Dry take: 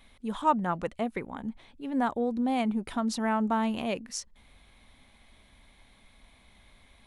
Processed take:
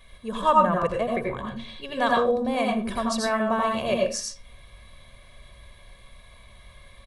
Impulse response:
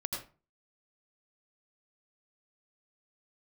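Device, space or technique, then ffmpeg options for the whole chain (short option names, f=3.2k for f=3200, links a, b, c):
microphone above a desk: -filter_complex "[0:a]asettb=1/sr,asplit=3[a][b][c];[a]atrim=end=1.384[d];[b]atrim=start=1.38:end=2.2,asetpts=PTS-STARTPTS,afade=t=in:d=0.004:c=qsin,afade=t=out:st=0.816:d=0.004:c=qsin,equalizer=f=3.8k:w=0.77:g=11.5[e];[c]atrim=start=2.196[f];[d][e]acrossfade=d=0.004:c1=hsin:c2=qsin[g];[g][f]acrossfade=d=0.004:c1=qsin:c2=hsin,aecho=1:1:1.8:0.71[h];[1:a]atrim=start_sample=2205[i];[h][i]afir=irnorm=-1:irlink=0,volume=3.5dB"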